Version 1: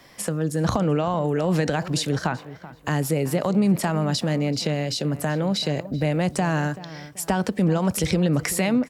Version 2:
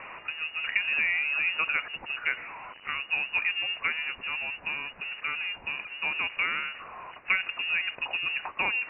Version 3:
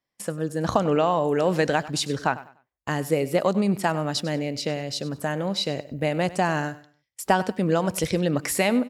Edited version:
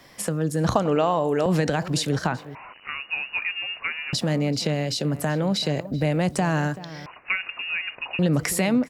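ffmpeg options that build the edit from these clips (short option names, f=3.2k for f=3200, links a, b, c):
-filter_complex "[1:a]asplit=2[a][b];[0:a]asplit=4[c][d][e][f];[c]atrim=end=0.732[g];[2:a]atrim=start=0.728:end=1.462[h];[d]atrim=start=1.458:end=2.552[i];[a]atrim=start=2.548:end=4.132[j];[e]atrim=start=4.128:end=7.062[k];[b]atrim=start=7.058:end=8.192[l];[f]atrim=start=8.188[m];[g][h]acrossfade=d=0.004:c1=hsin:c2=hsin[n];[n][i]acrossfade=d=0.004:c1=hsin:c2=hsin[o];[o][j]acrossfade=d=0.004:c1=hsin:c2=hsin[p];[p][k]acrossfade=d=0.004:c1=hsin:c2=hsin[q];[q][l]acrossfade=d=0.004:c1=hsin:c2=hsin[r];[r][m]acrossfade=d=0.004:c1=hsin:c2=hsin"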